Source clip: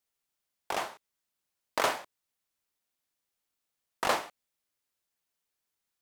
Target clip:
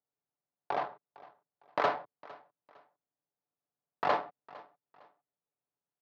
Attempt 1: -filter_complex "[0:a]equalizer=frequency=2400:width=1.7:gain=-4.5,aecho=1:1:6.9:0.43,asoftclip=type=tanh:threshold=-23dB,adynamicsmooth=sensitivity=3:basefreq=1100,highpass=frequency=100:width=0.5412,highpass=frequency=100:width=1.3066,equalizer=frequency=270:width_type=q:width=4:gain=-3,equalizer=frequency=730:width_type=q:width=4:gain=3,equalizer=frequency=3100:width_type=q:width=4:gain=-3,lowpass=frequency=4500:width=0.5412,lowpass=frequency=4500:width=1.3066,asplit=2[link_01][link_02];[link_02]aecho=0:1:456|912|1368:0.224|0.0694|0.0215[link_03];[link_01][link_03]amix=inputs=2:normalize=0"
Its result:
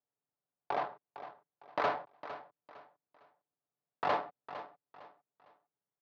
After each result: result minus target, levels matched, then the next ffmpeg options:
soft clipping: distortion +10 dB; echo-to-direct +8 dB
-filter_complex "[0:a]equalizer=frequency=2400:width=1.7:gain=-4.5,aecho=1:1:6.9:0.43,asoftclip=type=tanh:threshold=-14.5dB,adynamicsmooth=sensitivity=3:basefreq=1100,highpass=frequency=100:width=0.5412,highpass=frequency=100:width=1.3066,equalizer=frequency=270:width_type=q:width=4:gain=-3,equalizer=frequency=730:width_type=q:width=4:gain=3,equalizer=frequency=3100:width_type=q:width=4:gain=-3,lowpass=frequency=4500:width=0.5412,lowpass=frequency=4500:width=1.3066,asplit=2[link_01][link_02];[link_02]aecho=0:1:456|912|1368:0.224|0.0694|0.0215[link_03];[link_01][link_03]amix=inputs=2:normalize=0"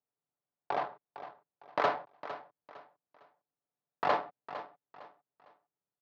echo-to-direct +8 dB
-filter_complex "[0:a]equalizer=frequency=2400:width=1.7:gain=-4.5,aecho=1:1:6.9:0.43,asoftclip=type=tanh:threshold=-14.5dB,adynamicsmooth=sensitivity=3:basefreq=1100,highpass=frequency=100:width=0.5412,highpass=frequency=100:width=1.3066,equalizer=frequency=270:width_type=q:width=4:gain=-3,equalizer=frequency=730:width_type=q:width=4:gain=3,equalizer=frequency=3100:width_type=q:width=4:gain=-3,lowpass=frequency=4500:width=0.5412,lowpass=frequency=4500:width=1.3066,asplit=2[link_01][link_02];[link_02]aecho=0:1:456|912:0.0891|0.0276[link_03];[link_01][link_03]amix=inputs=2:normalize=0"

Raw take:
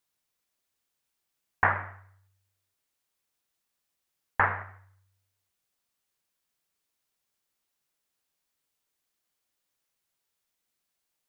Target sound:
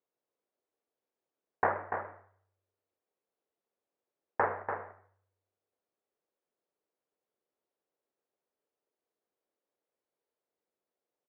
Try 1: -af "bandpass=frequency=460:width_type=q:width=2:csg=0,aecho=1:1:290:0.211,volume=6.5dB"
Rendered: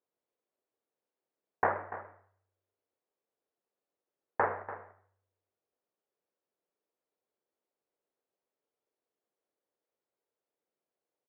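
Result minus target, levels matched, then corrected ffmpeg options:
echo-to-direct −6.5 dB
-af "bandpass=frequency=460:width_type=q:width=2:csg=0,aecho=1:1:290:0.447,volume=6.5dB"

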